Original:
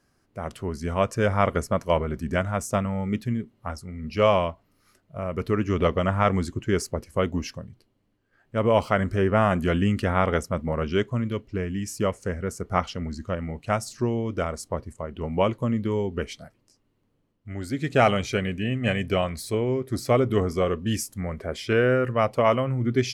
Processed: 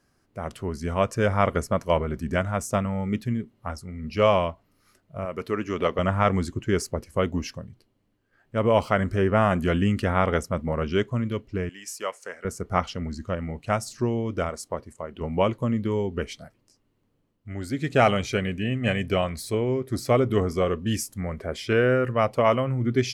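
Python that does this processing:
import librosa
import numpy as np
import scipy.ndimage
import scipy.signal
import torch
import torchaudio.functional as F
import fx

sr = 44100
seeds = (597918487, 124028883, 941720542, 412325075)

y = fx.highpass(x, sr, hz=340.0, slope=6, at=(5.25, 5.99))
y = fx.highpass(y, sr, hz=710.0, slope=12, at=(11.69, 12.45))
y = fx.low_shelf(y, sr, hz=170.0, db=-10.0, at=(14.49, 15.21))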